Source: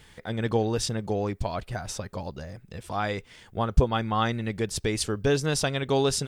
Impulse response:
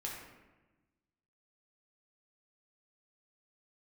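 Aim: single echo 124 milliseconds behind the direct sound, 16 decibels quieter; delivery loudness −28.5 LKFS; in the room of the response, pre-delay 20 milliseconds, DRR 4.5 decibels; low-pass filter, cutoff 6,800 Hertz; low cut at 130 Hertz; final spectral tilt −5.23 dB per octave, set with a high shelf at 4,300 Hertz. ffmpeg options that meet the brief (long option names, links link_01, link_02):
-filter_complex "[0:a]highpass=130,lowpass=6800,highshelf=frequency=4300:gain=-3.5,aecho=1:1:124:0.158,asplit=2[link_01][link_02];[1:a]atrim=start_sample=2205,adelay=20[link_03];[link_02][link_03]afir=irnorm=-1:irlink=0,volume=-5dB[link_04];[link_01][link_04]amix=inputs=2:normalize=0"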